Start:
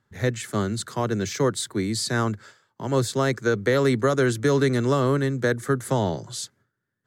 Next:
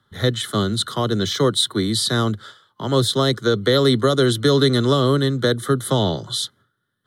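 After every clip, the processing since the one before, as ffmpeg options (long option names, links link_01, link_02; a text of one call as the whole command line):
ffmpeg -i in.wav -filter_complex "[0:a]superequalizer=10b=2:12b=0.398:13b=3.55:15b=0.631:16b=1.58,acrossover=split=160|800|2100[link_01][link_02][link_03][link_04];[link_03]acompressor=threshold=-36dB:ratio=6[link_05];[link_01][link_02][link_05][link_04]amix=inputs=4:normalize=0,volume=4.5dB" out.wav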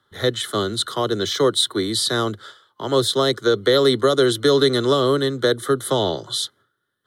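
ffmpeg -i in.wav -af "lowshelf=frequency=270:width_type=q:width=1.5:gain=-6.5" out.wav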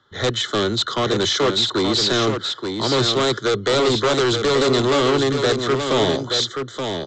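ffmpeg -i in.wav -af "aresample=16000,asoftclip=type=hard:threshold=-21dB,aresample=44100,aecho=1:1:876:0.501,volume=5dB" out.wav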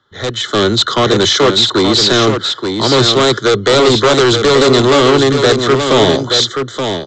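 ffmpeg -i in.wav -af "dynaudnorm=framelen=330:gausssize=3:maxgain=11.5dB" out.wav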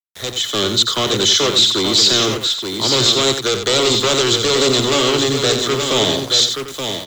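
ffmpeg -i in.wav -filter_complex "[0:a]aexciter=amount=3.5:drive=1.8:freq=2400,aeval=exprs='val(0)*gte(abs(val(0)),0.0841)':channel_layout=same,asplit=2[link_01][link_02];[link_02]aecho=0:1:89:0.398[link_03];[link_01][link_03]amix=inputs=2:normalize=0,volume=-8.5dB" out.wav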